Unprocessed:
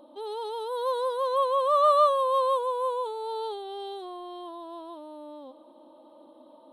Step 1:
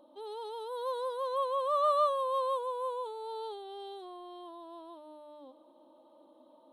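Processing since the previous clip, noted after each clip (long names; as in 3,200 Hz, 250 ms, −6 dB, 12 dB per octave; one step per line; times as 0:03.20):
mains-hum notches 60/120/180/240/300 Hz
level −7 dB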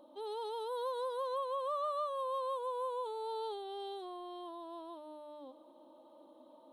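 downward compressor 6 to 1, threshold −35 dBFS, peak gain reduction 11.5 dB
level +1 dB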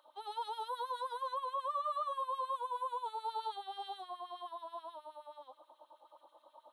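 brickwall limiter −32.5 dBFS, peak gain reduction 4 dB
auto-filter high-pass sine 9.4 Hz 730–2,000 Hz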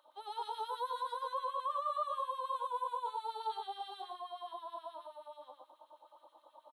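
single-tap delay 117 ms −3 dB
level −1.5 dB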